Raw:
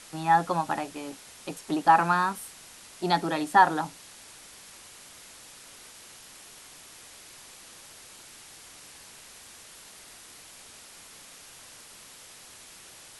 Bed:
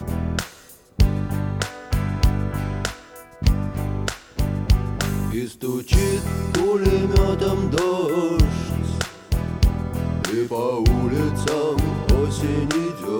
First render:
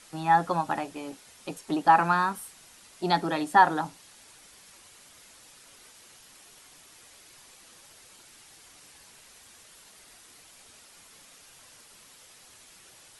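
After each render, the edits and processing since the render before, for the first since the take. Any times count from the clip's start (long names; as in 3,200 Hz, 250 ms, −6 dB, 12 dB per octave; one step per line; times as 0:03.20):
broadband denoise 6 dB, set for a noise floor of −49 dBFS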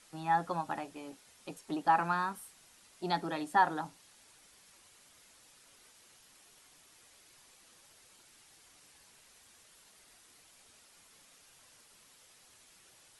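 level −8 dB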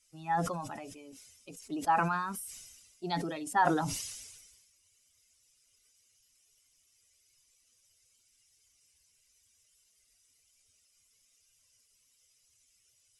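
spectral dynamics exaggerated over time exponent 1.5
level that may fall only so fast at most 42 dB per second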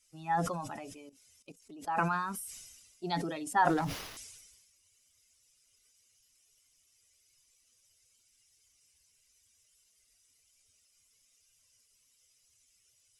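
0:01.09–0:01.98: output level in coarse steps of 16 dB
0:03.69–0:04.17: windowed peak hold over 5 samples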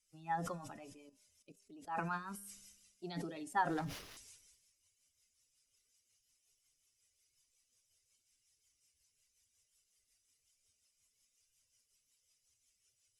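rotating-speaker cabinet horn 5.5 Hz
tuned comb filter 200 Hz, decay 0.95 s, mix 50%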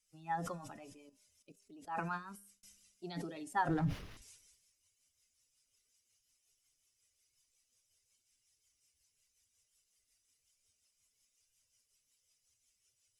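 0:02.12–0:02.63: fade out
0:03.68–0:04.22: bass and treble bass +12 dB, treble −9 dB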